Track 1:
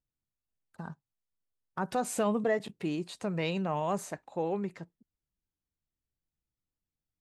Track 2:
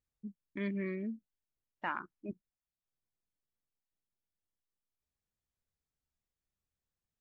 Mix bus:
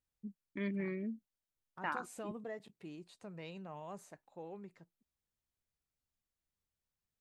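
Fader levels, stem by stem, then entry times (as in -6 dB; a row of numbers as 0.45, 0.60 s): -16.0, -1.5 dB; 0.00, 0.00 s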